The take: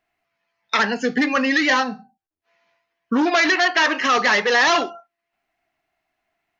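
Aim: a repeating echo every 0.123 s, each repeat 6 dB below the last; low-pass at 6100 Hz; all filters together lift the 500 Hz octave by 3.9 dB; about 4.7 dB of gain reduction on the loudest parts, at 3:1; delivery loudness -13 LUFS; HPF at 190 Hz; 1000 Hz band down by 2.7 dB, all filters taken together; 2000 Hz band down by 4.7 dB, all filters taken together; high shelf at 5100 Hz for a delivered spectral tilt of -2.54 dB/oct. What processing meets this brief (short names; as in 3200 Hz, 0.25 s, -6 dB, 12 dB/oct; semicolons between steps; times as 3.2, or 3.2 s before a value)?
HPF 190 Hz; LPF 6100 Hz; bell 500 Hz +6.5 dB; bell 1000 Hz -5 dB; bell 2000 Hz -5 dB; high shelf 5100 Hz +4.5 dB; compressor 3:1, threshold -20 dBFS; feedback echo 0.123 s, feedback 50%, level -6 dB; gain +9 dB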